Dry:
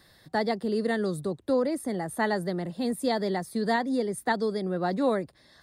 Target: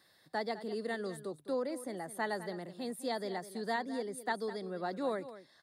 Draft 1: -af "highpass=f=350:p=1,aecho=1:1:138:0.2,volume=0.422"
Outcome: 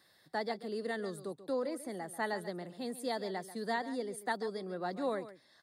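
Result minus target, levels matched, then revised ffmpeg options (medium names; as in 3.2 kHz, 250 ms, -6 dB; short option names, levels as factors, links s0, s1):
echo 68 ms early
-af "highpass=f=350:p=1,aecho=1:1:206:0.2,volume=0.422"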